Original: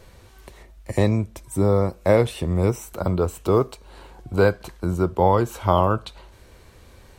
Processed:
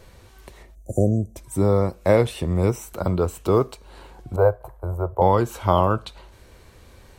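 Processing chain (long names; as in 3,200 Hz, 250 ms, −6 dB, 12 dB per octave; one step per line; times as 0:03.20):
0:00.75–0:01.36: time-frequency box erased 770–5,800 Hz
0:04.36–0:05.22: drawn EQ curve 130 Hz 0 dB, 210 Hz −24 dB, 590 Hz +6 dB, 930 Hz +2 dB, 2,700 Hz −22 dB, 5,300 Hz −26 dB, 14,000 Hz −2 dB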